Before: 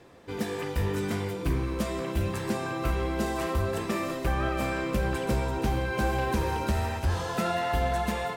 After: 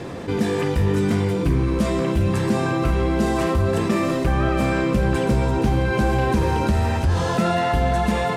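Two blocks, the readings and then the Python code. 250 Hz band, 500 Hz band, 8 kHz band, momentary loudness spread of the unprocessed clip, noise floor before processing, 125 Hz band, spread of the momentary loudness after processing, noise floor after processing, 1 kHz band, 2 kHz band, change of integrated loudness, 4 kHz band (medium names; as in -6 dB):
+10.5 dB, +8.5 dB, +4.5 dB, 4 LU, -35 dBFS, +10.0 dB, 1 LU, -23 dBFS, +6.5 dB, +6.0 dB, +8.5 dB, +6.0 dB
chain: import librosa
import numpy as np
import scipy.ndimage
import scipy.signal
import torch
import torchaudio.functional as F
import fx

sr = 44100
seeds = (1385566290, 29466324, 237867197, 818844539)

y = scipy.signal.sosfilt(scipy.signal.butter(2, 11000.0, 'lowpass', fs=sr, output='sos'), x)
y = fx.peak_eq(y, sr, hz=160.0, db=7.0, octaves=2.5)
y = fx.env_flatten(y, sr, amount_pct=50)
y = y * 10.0 ** (2.0 / 20.0)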